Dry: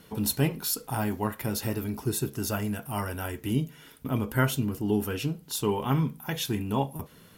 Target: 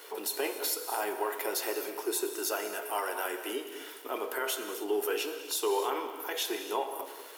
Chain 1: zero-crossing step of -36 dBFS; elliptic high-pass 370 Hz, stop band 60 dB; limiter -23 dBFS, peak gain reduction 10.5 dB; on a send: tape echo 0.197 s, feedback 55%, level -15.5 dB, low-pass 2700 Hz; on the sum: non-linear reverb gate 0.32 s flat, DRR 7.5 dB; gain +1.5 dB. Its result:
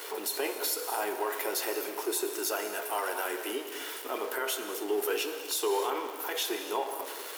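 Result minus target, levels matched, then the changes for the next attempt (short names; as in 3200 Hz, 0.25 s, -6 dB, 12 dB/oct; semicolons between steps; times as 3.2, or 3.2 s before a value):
zero-crossing step: distortion +10 dB
change: zero-crossing step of -47 dBFS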